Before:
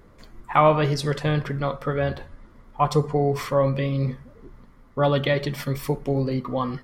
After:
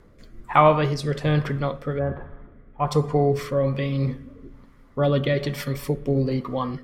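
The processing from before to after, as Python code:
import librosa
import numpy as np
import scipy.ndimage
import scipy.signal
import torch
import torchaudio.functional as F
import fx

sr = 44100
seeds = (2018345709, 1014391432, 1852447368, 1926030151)

y = fx.lowpass(x, sr, hz=fx.line((1.98, 1400.0), (2.86, 2900.0)), slope=24, at=(1.98, 2.86), fade=0.02)
y = fx.rev_spring(y, sr, rt60_s=2.1, pass_ms=(40,), chirp_ms=70, drr_db=19.0)
y = fx.rotary(y, sr, hz=1.2)
y = y * 10.0 ** (2.0 / 20.0)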